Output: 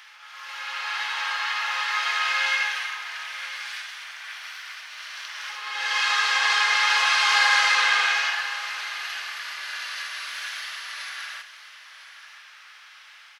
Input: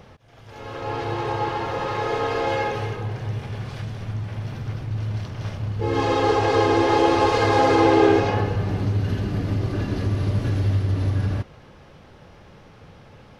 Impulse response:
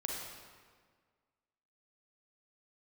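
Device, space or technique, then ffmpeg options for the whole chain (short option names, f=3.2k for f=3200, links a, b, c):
reverse reverb: -filter_complex "[0:a]highpass=f=1.5k:w=0.5412,highpass=f=1.5k:w=1.3066,aecho=1:1:997:0.188,areverse[a];[1:a]atrim=start_sample=2205[b];[a][b]afir=irnorm=-1:irlink=0,areverse,volume=8.5dB"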